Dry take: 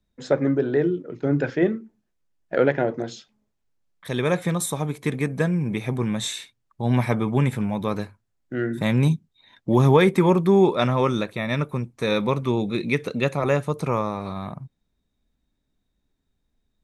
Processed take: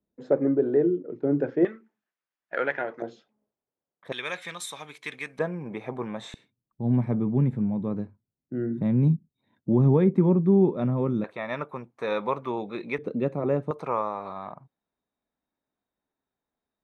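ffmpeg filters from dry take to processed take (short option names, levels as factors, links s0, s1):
-af "asetnsamples=n=441:p=0,asendcmd='1.65 bandpass f 1600;3.02 bandpass f 540;4.12 bandpass f 2800;5.39 bandpass f 740;6.34 bandpass f 200;11.24 bandpass f 900;12.98 bandpass f 300;13.71 bandpass f 890',bandpass=f=390:t=q:w=1:csg=0"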